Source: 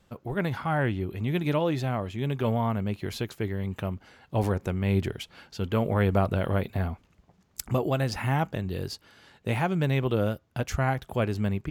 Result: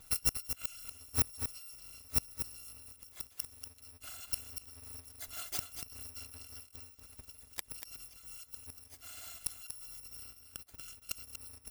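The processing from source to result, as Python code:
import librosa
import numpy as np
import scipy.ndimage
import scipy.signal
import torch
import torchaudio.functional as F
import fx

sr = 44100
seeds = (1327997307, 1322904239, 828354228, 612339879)

y = fx.bit_reversed(x, sr, seeds[0], block=256)
y = fx.gate_flip(y, sr, shuts_db=-24.0, range_db=-32)
y = y + 10.0 ** (-8.0 / 20.0) * np.pad(y, (int(238 * sr / 1000.0), 0))[:len(y)]
y = F.gain(torch.from_numpy(y), 7.0).numpy()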